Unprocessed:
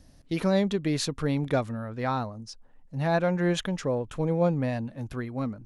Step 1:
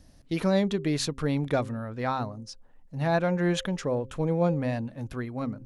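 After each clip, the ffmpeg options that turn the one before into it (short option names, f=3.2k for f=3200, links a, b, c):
-af "bandreject=f=131.8:t=h:w=4,bandreject=f=263.6:t=h:w=4,bandreject=f=395.4:t=h:w=4,bandreject=f=527.2:t=h:w=4"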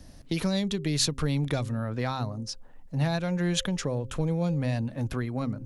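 -filter_complex "[0:a]acrossover=split=140|3000[a][b][c];[b]acompressor=threshold=-36dB:ratio=6[d];[a][d][c]amix=inputs=3:normalize=0,volume=6.5dB"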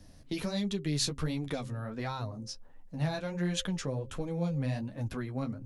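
-af "flanger=delay=9.6:depth=5.7:regen=-16:speed=1.4:shape=sinusoidal,volume=-2dB"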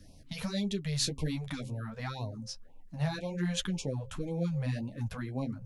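-af "afftfilt=real='re*(1-between(b*sr/1024,290*pow(1600/290,0.5+0.5*sin(2*PI*1.9*pts/sr))/1.41,290*pow(1600/290,0.5+0.5*sin(2*PI*1.9*pts/sr))*1.41))':imag='im*(1-between(b*sr/1024,290*pow(1600/290,0.5+0.5*sin(2*PI*1.9*pts/sr))/1.41,290*pow(1600/290,0.5+0.5*sin(2*PI*1.9*pts/sr))*1.41))':win_size=1024:overlap=0.75"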